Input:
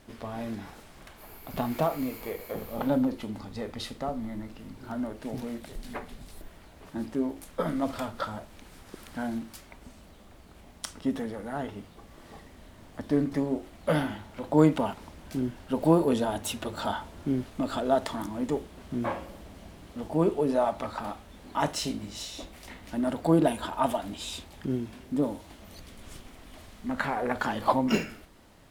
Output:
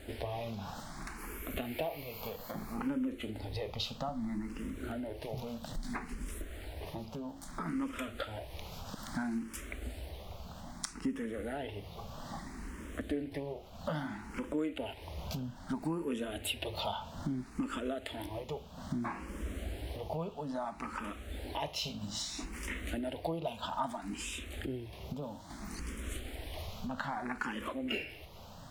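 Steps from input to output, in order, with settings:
dynamic equaliser 2,700 Hz, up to +8 dB, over −54 dBFS, Q 1.8
downward compressor 4 to 1, threshold −42 dBFS, peak gain reduction 22.5 dB
parametric band 61 Hz +6.5 dB 0.68 octaves
frequency shifter mixed with the dry sound +0.61 Hz
level +8 dB

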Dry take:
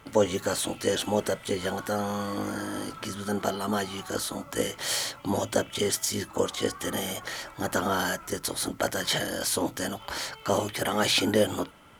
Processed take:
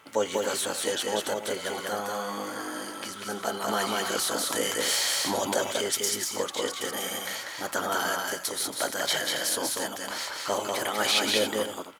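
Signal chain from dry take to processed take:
high-pass filter 620 Hz 6 dB per octave
loudspeakers that aren't time-aligned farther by 66 metres −3 dB, 95 metres −12 dB
0:03.68–0:05.72: envelope flattener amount 50%

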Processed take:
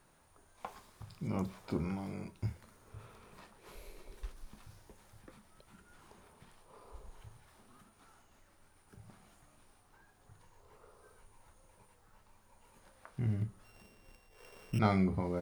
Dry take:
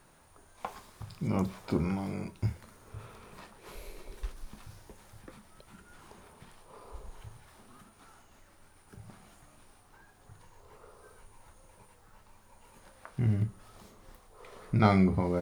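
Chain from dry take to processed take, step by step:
0:13.64–0:14.79: samples sorted by size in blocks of 16 samples
level −6 dB

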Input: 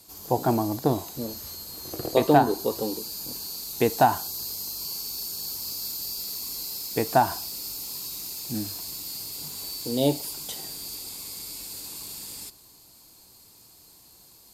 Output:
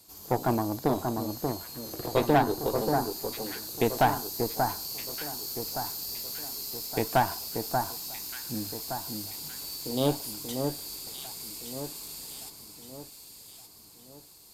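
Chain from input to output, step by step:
tube saturation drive 15 dB, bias 0.7
delay that swaps between a low-pass and a high-pass 584 ms, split 1,600 Hz, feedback 65%, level −4.5 dB

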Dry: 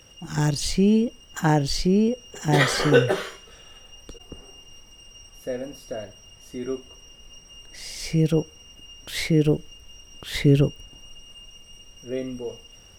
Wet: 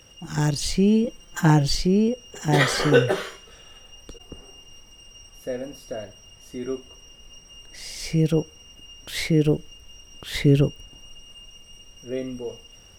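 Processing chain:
0:01.04–0:01.75: comb filter 5.8 ms, depth 85%

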